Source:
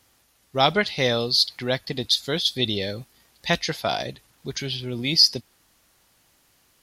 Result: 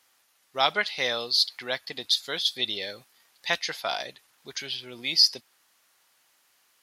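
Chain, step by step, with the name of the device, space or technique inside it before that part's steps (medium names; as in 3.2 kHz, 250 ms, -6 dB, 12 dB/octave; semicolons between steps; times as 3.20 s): filter by subtraction (in parallel: low-pass 1.3 kHz 12 dB/octave + polarity flip); on the sum: trim -3.5 dB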